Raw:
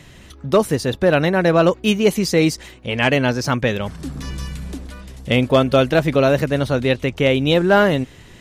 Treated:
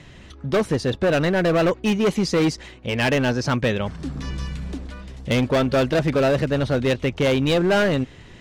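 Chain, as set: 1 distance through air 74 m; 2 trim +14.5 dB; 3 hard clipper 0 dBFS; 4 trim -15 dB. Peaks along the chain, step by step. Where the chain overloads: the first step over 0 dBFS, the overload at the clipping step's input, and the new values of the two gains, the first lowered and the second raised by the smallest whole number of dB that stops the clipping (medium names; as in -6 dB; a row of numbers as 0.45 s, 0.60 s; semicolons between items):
-5.0 dBFS, +9.5 dBFS, 0.0 dBFS, -15.0 dBFS; step 2, 9.5 dB; step 2 +4.5 dB, step 4 -5 dB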